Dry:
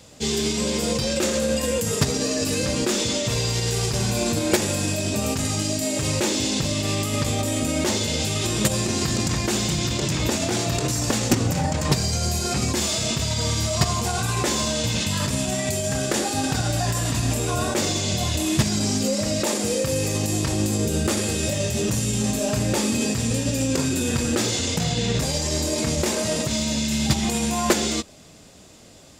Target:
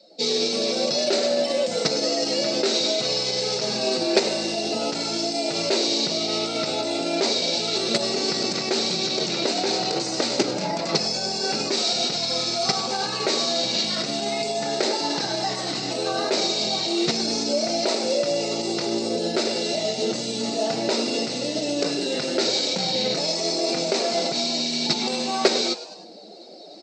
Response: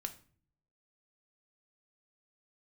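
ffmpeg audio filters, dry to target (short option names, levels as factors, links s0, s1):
-filter_complex "[0:a]highpass=f=210:w=0.5412,highpass=f=210:w=1.3066,equalizer=f=240:t=q:w=4:g=-10,equalizer=f=960:t=q:w=4:g=-10,equalizer=f=1600:t=q:w=4:g=-6,equalizer=f=2800:t=q:w=4:g=-7,equalizer=f=4000:t=q:w=4:g=8,lowpass=f=5100:w=0.5412,lowpass=f=5100:w=1.3066,asetrate=48000,aresample=44100,afftdn=nr=15:nf=-48,asplit=4[s0][s1][s2][s3];[s1]adelay=102,afreqshift=130,volume=0.178[s4];[s2]adelay=204,afreqshift=260,volume=0.0589[s5];[s3]adelay=306,afreqshift=390,volume=0.0193[s6];[s0][s4][s5][s6]amix=inputs=4:normalize=0,areverse,acompressor=mode=upward:threshold=0.0158:ratio=2.5,areverse,volume=1.41"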